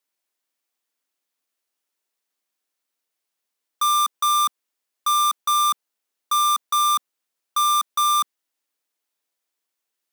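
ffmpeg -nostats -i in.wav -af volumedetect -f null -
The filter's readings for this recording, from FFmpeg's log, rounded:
mean_volume: -25.5 dB
max_volume: -13.5 dB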